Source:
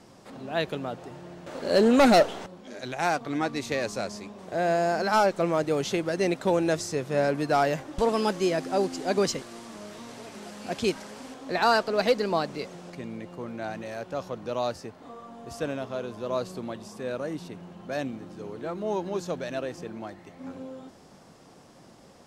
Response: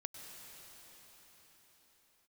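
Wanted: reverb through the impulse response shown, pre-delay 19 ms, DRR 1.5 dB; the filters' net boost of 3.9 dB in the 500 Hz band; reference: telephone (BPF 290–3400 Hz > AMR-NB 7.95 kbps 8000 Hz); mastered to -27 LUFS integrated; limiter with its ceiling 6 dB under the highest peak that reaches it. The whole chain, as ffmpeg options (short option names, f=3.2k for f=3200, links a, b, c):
-filter_complex "[0:a]equalizer=f=500:t=o:g=5.5,alimiter=limit=-14dB:level=0:latency=1,asplit=2[a][b];[1:a]atrim=start_sample=2205,adelay=19[c];[b][c]afir=irnorm=-1:irlink=0,volume=1dB[d];[a][d]amix=inputs=2:normalize=0,highpass=290,lowpass=3.4k,volume=-1dB" -ar 8000 -c:a libopencore_amrnb -b:a 7950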